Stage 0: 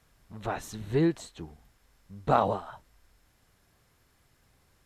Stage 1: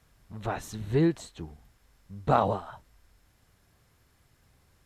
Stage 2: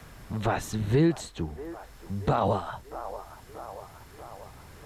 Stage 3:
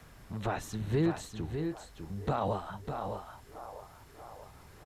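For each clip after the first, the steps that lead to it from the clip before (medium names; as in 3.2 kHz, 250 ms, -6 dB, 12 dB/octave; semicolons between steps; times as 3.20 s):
peaking EQ 86 Hz +4 dB 2 oct
peak limiter -19.5 dBFS, peak gain reduction 11 dB; feedback echo behind a band-pass 635 ms, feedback 51%, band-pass 840 Hz, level -16.5 dB; three bands compressed up and down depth 40%; trim +7 dB
delay 601 ms -7 dB; trim -6.5 dB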